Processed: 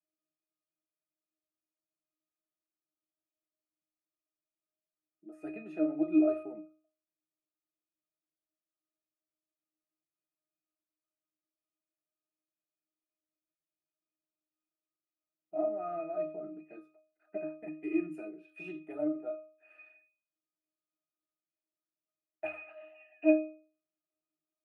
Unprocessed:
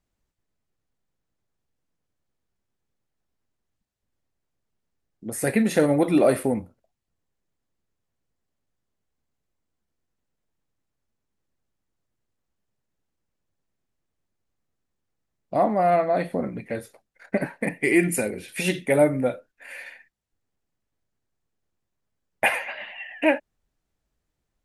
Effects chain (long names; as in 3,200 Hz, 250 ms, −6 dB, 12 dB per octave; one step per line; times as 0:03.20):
high-pass filter 280 Hz 24 dB per octave
in parallel at −11.5 dB: hard clipping −18.5 dBFS, distortion −10 dB
on the sum: resonances in every octave D#, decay 0.42 s
level +4 dB